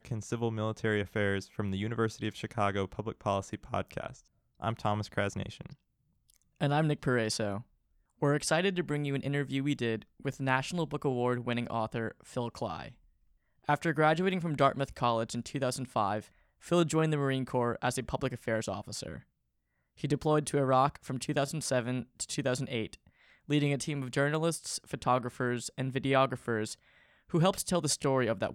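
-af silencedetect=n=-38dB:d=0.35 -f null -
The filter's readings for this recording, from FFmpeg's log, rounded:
silence_start: 4.10
silence_end: 4.62 | silence_duration: 0.52
silence_start: 5.72
silence_end: 6.61 | silence_duration: 0.88
silence_start: 7.60
silence_end: 8.22 | silence_duration: 0.62
silence_start: 12.88
silence_end: 13.69 | silence_duration: 0.81
silence_start: 16.20
silence_end: 16.67 | silence_duration: 0.47
silence_start: 19.17
silence_end: 20.04 | silence_duration: 0.86
silence_start: 22.94
silence_end: 23.49 | silence_duration: 0.55
silence_start: 26.73
silence_end: 27.34 | silence_duration: 0.60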